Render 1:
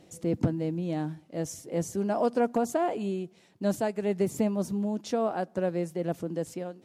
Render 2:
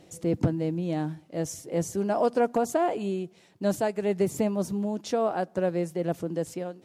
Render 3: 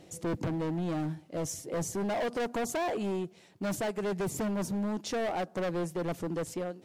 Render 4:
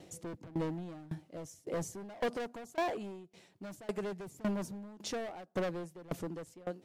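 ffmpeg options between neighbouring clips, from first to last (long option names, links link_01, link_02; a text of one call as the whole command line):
ffmpeg -i in.wav -af "equalizer=frequency=230:width_type=o:width=0.4:gain=-4,volume=2.5dB" out.wav
ffmpeg -i in.wav -af "asoftclip=type=hard:threshold=-29dB" out.wav
ffmpeg -i in.wav -af "aeval=exprs='val(0)*pow(10,-23*if(lt(mod(1.8*n/s,1),2*abs(1.8)/1000),1-mod(1.8*n/s,1)/(2*abs(1.8)/1000),(mod(1.8*n/s,1)-2*abs(1.8)/1000)/(1-2*abs(1.8)/1000))/20)':channel_layout=same,volume=1dB" out.wav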